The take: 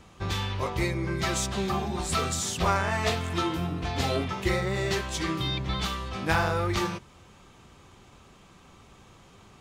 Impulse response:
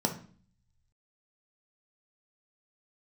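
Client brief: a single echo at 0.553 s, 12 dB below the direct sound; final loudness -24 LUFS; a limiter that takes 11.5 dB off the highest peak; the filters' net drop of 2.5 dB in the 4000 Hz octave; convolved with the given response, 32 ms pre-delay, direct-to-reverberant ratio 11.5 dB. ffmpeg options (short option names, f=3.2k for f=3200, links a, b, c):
-filter_complex "[0:a]equalizer=f=4k:t=o:g=-3,alimiter=limit=-22.5dB:level=0:latency=1,aecho=1:1:553:0.251,asplit=2[a][b];[1:a]atrim=start_sample=2205,adelay=32[c];[b][c]afir=irnorm=-1:irlink=0,volume=-19dB[d];[a][d]amix=inputs=2:normalize=0,volume=6.5dB"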